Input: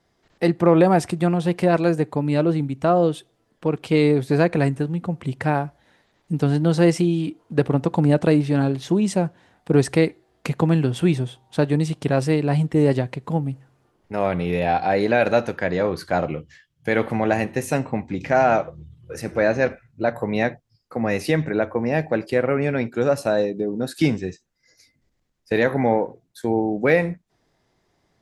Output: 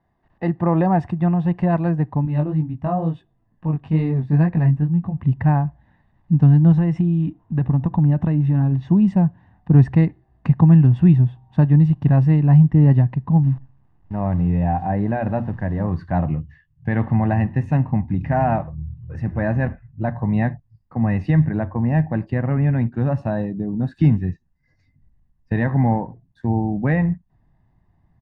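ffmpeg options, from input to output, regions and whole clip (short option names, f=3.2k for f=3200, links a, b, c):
-filter_complex "[0:a]asettb=1/sr,asplit=3[a][b][c];[a]atrim=end=2.254[d];[b]atrim=start=2.25:end=5.17,asetpts=PTS-STARTPTS,afade=t=in:d=0.004:c=qsin,afade=t=out:st=2.916:d=0.004:c=qsin,bandreject=f=1.4k:w=21,flanger=delay=17.5:depth=3.6:speed=2.2[e];[c]atrim=start=5.166[f];[d][e]acrossfade=d=0.004:c1=hsin:c2=qsin[g];[g][f]acrossfade=d=0.004:c1=qsin:c2=hsin,asettb=1/sr,asplit=3[h][i][j];[h]atrim=end=6.724[k];[i]atrim=start=6.72:end=8.72,asetpts=PTS-STARTPTS,afade=t=in:d=0.004:c=qsin,afade=t=out:st=1.996:d=0.004:c=qsin,acompressor=threshold=-21dB:ratio=2:attack=3.2:release=140:knee=1:detection=peak,asuperstop=centerf=4600:order=4:qfactor=7.8[l];[j]atrim=start=8.716[m];[k][l]acrossfade=d=0.004:c1=hsin:c2=qsin[n];[n][m]acrossfade=d=0.004:c1=qsin:c2=hsin,asettb=1/sr,asplit=3[o][p][q];[o]atrim=end=13.434[r];[p]atrim=start=13.43:end=15.88,asetpts=PTS-STARTPTS,afade=t=in:d=0.004:c=qsin,afade=t=out:st=2.446:d=0.004:c=qsin,lowpass=f=1.2k:p=1,bandreject=f=60:t=h:w=6,bandreject=f=120:t=h:w=6,bandreject=f=180:t=h:w=6,bandreject=f=240:t=h:w=6,acrusher=bits=8:dc=4:mix=0:aa=0.000001[s];[q]atrim=start=15.876[t];[r][s]acrossfade=d=0.004:c1=hsin:c2=qsin[u];[u][t]acrossfade=d=0.004:c1=qsin:c2=hsin,lowpass=1.5k,asubboost=boost=4:cutoff=200,aecho=1:1:1.1:0.56,volume=-2dB"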